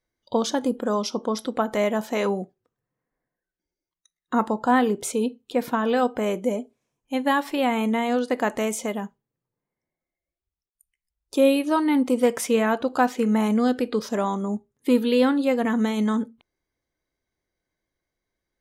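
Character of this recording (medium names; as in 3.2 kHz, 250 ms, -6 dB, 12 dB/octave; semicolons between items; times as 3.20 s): noise floor -90 dBFS; spectral tilt -4.0 dB/octave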